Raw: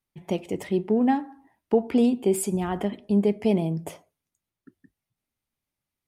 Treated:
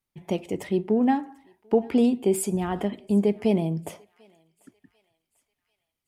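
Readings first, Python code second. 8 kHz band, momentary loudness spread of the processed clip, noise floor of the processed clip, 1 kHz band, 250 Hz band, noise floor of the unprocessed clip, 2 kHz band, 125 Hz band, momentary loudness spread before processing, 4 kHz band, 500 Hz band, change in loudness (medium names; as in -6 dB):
0.0 dB, 10 LU, -84 dBFS, 0.0 dB, 0.0 dB, under -85 dBFS, 0.0 dB, 0.0 dB, 10 LU, 0.0 dB, 0.0 dB, 0.0 dB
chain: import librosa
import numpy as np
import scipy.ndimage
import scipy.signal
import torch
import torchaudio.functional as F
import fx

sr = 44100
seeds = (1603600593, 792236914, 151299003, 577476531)

y = fx.echo_thinned(x, sr, ms=743, feedback_pct=51, hz=1100.0, wet_db=-23.5)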